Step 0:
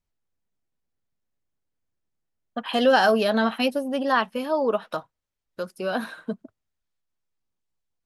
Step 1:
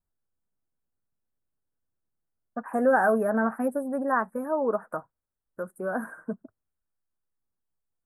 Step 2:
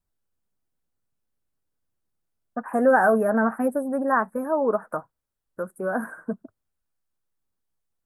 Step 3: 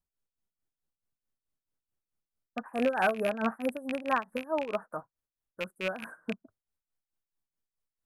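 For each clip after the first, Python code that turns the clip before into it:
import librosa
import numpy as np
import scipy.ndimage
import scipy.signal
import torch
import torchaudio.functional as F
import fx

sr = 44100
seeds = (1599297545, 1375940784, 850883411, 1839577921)

y1 = scipy.signal.sosfilt(scipy.signal.ellip(3, 1.0, 60, [1600.0, 8400.0], 'bandstop', fs=sr, output='sos'), x)
y1 = F.gain(torch.from_numpy(y1), -2.5).numpy()
y2 = fx.vibrato(y1, sr, rate_hz=7.8, depth_cents=29.0)
y2 = F.gain(torch.from_numpy(y2), 3.5).numpy()
y3 = fx.rattle_buzz(y2, sr, strikes_db=-35.0, level_db=-16.0)
y3 = y3 * (1.0 - 0.78 / 2.0 + 0.78 / 2.0 * np.cos(2.0 * np.pi * 4.6 * (np.arange(len(y3)) / sr)))
y3 = F.gain(torch.from_numpy(y3), -5.5).numpy()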